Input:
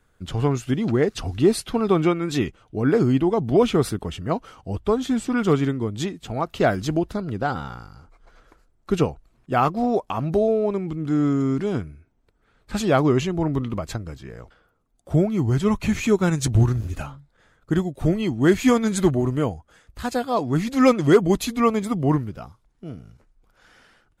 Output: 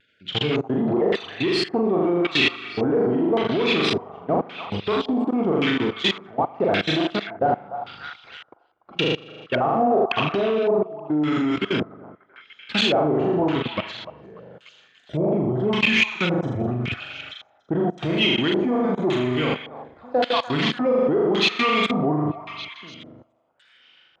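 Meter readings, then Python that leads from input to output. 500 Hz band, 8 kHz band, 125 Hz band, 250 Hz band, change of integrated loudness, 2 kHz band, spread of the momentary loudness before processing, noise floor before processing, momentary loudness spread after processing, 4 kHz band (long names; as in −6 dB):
0.0 dB, can't be measured, −6.0 dB, −1.5 dB, 0.0 dB, +7.0 dB, 13 LU, −65 dBFS, 13 LU, +11.5 dB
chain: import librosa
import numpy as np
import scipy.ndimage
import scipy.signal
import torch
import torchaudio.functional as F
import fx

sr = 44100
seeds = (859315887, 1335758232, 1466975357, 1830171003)

y = fx.spec_dropout(x, sr, seeds[0], share_pct=21)
y = fx.room_flutter(y, sr, wall_m=6.9, rt60_s=0.79)
y = fx.level_steps(y, sr, step_db=24)
y = fx.weighting(y, sr, curve='D')
y = fx.echo_stepped(y, sr, ms=292, hz=950.0, octaves=0.7, feedback_pct=70, wet_db=-11.0)
y = 10.0 ** (-22.0 / 20.0) * np.tanh(y / 10.0 ** (-22.0 / 20.0))
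y = scipy.signal.sosfilt(scipy.signal.butter(2, 97.0, 'highpass', fs=sr, output='sos'), y)
y = fx.vibrato(y, sr, rate_hz=0.47, depth_cents=20.0)
y = fx.filter_lfo_lowpass(y, sr, shape='square', hz=0.89, low_hz=730.0, high_hz=3100.0, q=2.0)
y = F.gain(torch.from_numpy(y), 6.0).numpy()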